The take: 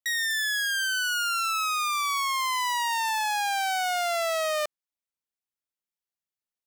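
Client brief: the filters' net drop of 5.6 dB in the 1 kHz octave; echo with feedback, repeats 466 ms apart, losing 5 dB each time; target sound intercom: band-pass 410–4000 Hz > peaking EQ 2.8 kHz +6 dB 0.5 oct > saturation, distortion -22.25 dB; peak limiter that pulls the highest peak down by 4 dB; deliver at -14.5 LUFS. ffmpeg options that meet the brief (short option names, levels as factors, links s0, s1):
-af "equalizer=f=1000:t=o:g=-7.5,alimiter=level_in=1.12:limit=0.0631:level=0:latency=1,volume=0.891,highpass=410,lowpass=4000,equalizer=f=2800:t=o:w=0.5:g=6,aecho=1:1:466|932|1398|1864|2330|2796|3262:0.562|0.315|0.176|0.0988|0.0553|0.031|0.0173,asoftclip=threshold=0.0891,volume=6.68"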